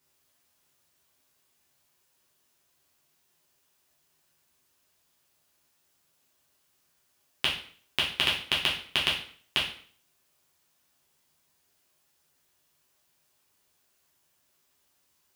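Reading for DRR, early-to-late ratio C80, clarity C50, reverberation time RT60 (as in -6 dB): -5.0 dB, 10.5 dB, 6.0 dB, 0.50 s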